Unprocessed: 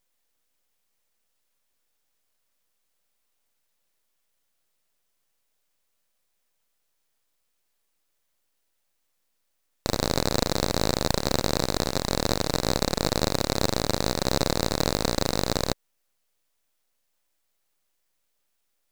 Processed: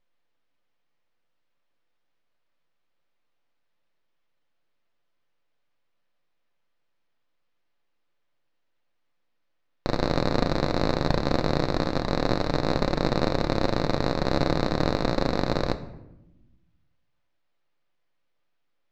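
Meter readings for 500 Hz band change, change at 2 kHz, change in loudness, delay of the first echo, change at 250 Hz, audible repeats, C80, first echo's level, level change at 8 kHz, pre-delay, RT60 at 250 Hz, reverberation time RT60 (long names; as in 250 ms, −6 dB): +1.5 dB, 0.0 dB, −0.5 dB, no echo audible, +2.5 dB, no echo audible, 16.0 dB, no echo audible, −17.0 dB, 3 ms, 1.5 s, 0.90 s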